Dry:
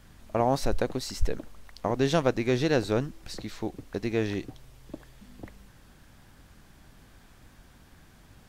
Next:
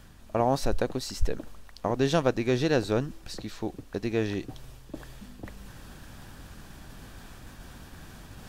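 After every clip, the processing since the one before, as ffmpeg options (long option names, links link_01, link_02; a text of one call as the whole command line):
ffmpeg -i in.wav -af "bandreject=frequency=2100:width=13,areverse,acompressor=mode=upward:threshold=-35dB:ratio=2.5,areverse" out.wav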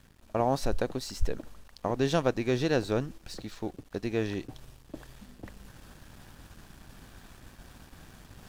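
ffmpeg -i in.wav -af "aeval=exprs='sgn(val(0))*max(abs(val(0))-0.00211,0)':channel_layout=same,volume=-2dB" out.wav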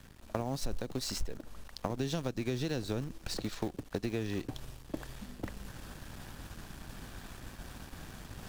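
ffmpeg -i in.wav -filter_complex "[0:a]acrossover=split=290|3000[link_01][link_02][link_03];[link_02]acompressor=threshold=-37dB:ratio=2.5[link_04];[link_01][link_04][link_03]amix=inputs=3:normalize=0,asplit=2[link_05][link_06];[link_06]acrusher=bits=5:mix=0:aa=0.000001,volume=-11dB[link_07];[link_05][link_07]amix=inputs=2:normalize=0,acompressor=threshold=-35dB:ratio=5,volume=4dB" out.wav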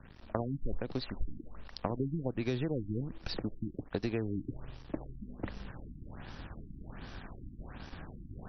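ffmpeg -i in.wav -af "afftfilt=real='re*lt(b*sr/1024,330*pow(6100/330,0.5+0.5*sin(2*PI*1.3*pts/sr)))':imag='im*lt(b*sr/1024,330*pow(6100/330,0.5+0.5*sin(2*PI*1.3*pts/sr)))':win_size=1024:overlap=0.75,volume=1dB" out.wav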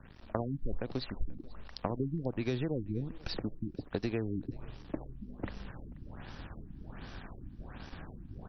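ffmpeg -i in.wav -af "aecho=1:1:485:0.0668" out.wav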